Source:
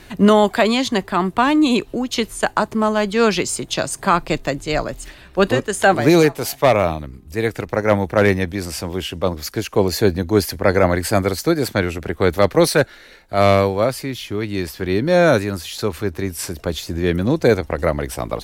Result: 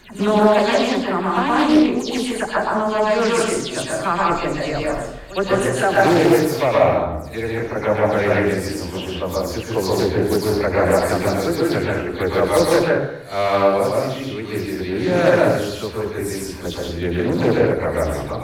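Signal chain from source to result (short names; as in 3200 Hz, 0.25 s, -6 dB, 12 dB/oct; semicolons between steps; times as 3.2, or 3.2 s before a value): spectral delay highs early, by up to 0.13 s; notches 50/100/150/200/250/300 Hz; pre-echo 68 ms -17 dB; plate-style reverb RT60 0.85 s, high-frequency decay 0.5×, pre-delay 0.105 s, DRR -3 dB; Doppler distortion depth 0.3 ms; gain -5 dB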